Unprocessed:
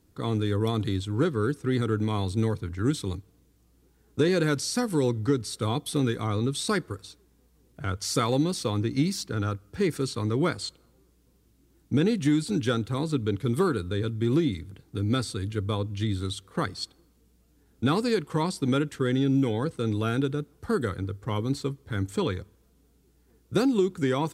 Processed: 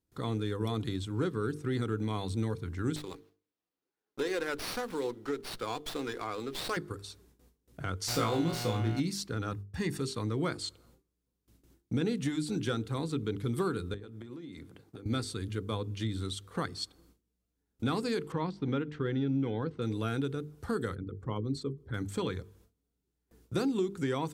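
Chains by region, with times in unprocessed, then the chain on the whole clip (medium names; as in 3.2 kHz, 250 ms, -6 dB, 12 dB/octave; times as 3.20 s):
2.96–6.77 s: high-pass 400 Hz + sliding maximum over 5 samples
8.07–8.99 s: mains buzz 120 Hz, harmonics 27, -36 dBFS -5 dB/octave + flutter echo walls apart 3.1 m, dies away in 0.31 s + sliding maximum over 3 samples
9.52–10.00 s: expander -44 dBFS + comb 1.1 ms, depth 57%
13.94–15.06 s: high-pass 810 Hz 6 dB/octave + tilt shelf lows +7 dB, about 1.2 kHz + compression 16:1, threshold -40 dBFS
18.32–19.82 s: de-esser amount 90% + distance through air 210 m
20.95–21.94 s: resonances exaggerated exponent 1.5 + hum notches 50/100/150/200/250/300/350/400/450 Hz
whole clip: gate with hold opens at -52 dBFS; hum notches 50/100/150/200/250/300/350/400/450 Hz; compression 1.5:1, threshold -43 dBFS; trim +1.5 dB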